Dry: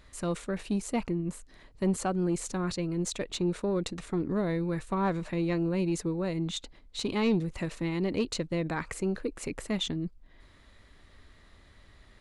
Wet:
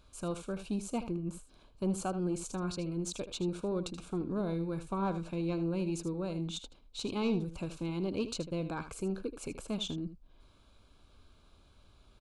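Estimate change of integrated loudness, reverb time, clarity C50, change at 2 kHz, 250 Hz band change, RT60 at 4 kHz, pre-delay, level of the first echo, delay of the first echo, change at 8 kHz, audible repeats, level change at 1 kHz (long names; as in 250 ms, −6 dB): −5.0 dB, no reverb audible, no reverb audible, −9.0 dB, −4.5 dB, no reverb audible, no reverb audible, −12.0 dB, 78 ms, −4.5 dB, 1, −5.0 dB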